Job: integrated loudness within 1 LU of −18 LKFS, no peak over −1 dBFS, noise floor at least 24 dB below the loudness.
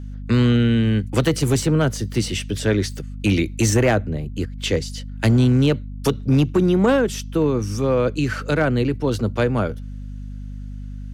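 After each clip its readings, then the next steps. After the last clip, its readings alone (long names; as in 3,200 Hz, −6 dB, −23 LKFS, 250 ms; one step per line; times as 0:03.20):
share of clipped samples 1.5%; peaks flattened at −10.0 dBFS; mains hum 50 Hz; hum harmonics up to 250 Hz; level of the hum −29 dBFS; integrated loudness −20.0 LKFS; sample peak −10.0 dBFS; target loudness −18.0 LKFS
→ clipped peaks rebuilt −10 dBFS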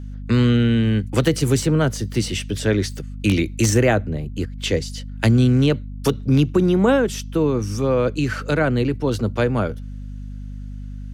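share of clipped samples 0.0%; mains hum 50 Hz; hum harmonics up to 250 Hz; level of the hum −29 dBFS
→ hum removal 50 Hz, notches 5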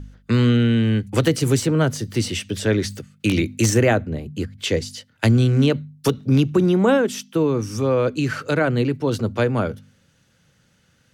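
mains hum none found; integrated loudness −20.5 LKFS; sample peak −2.5 dBFS; target loudness −18.0 LKFS
→ level +2.5 dB
brickwall limiter −1 dBFS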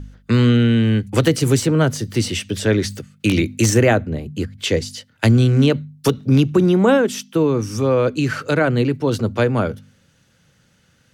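integrated loudness −18.0 LKFS; sample peak −1.0 dBFS; background noise floor −58 dBFS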